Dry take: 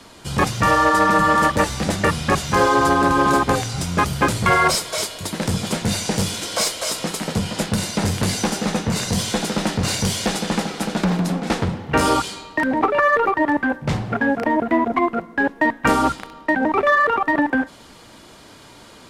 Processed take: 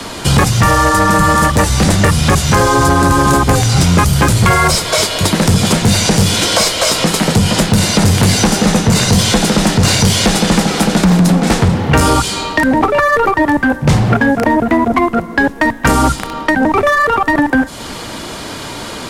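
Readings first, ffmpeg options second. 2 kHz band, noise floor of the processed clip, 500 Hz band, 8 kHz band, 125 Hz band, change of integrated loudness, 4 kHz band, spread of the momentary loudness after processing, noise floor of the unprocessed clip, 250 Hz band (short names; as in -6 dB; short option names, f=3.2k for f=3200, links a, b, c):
+6.0 dB, -26 dBFS, +6.5 dB, +10.5 dB, +13.0 dB, +8.0 dB, +10.5 dB, 4 LU, -45 dBFS, +9.0 dB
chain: -filter_complex "[0:a]acrossover=split=140|5700[a][b][c];[a]acompressor=threshold=-28dB:ratio=4[d];[b]acompressor=threshold=-30dB:ratio=4[e];[c]acompressor=threshold=-40dB:ratio=4[f];[d][e][f]amix=inputs=3:normalize=0,aeval=exprs='0.299*sin(PI/2*2.51*val(0)/0.299)':c=same,volume=7dB"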